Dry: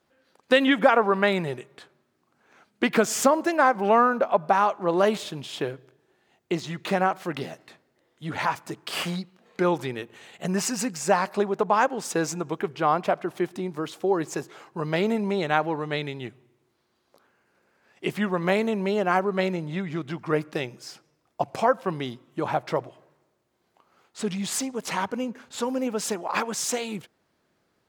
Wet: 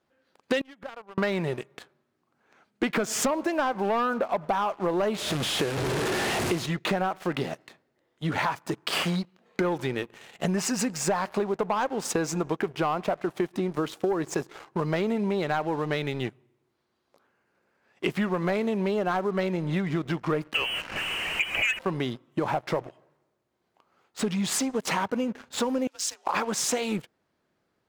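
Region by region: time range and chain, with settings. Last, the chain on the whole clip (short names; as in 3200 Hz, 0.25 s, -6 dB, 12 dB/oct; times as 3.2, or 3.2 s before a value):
0.61–1.18 low shelf 76 Hz +9.5 dB + flipped gate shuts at -18 dBFS, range -27 dB
5.18–6.66 delta modulation 64 kbps, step -26.5 dBFS + HPF 52 Hz
20.54–21.79 zero-crossing step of -29 dBFS + inverted band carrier 3100 Hz
25.87–26.27 G.711 law mismatch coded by mu + band-pass 5800 Hz, Q 1.3 + frequency shift +55 Hz
whole clip: high shelf 4300 Hz -5 dB; sample leveller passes 2; compressor, threshold -24 dBFS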